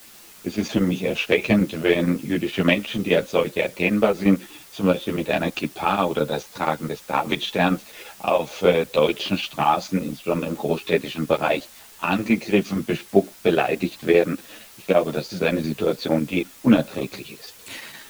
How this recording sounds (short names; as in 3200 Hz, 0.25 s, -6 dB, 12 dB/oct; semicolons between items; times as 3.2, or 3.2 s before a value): chopped level 8.7 Hz, depth 60%, duty 80%; a quantiser's noise floor 8-bit, dither triangular; a shimmering, thickened sound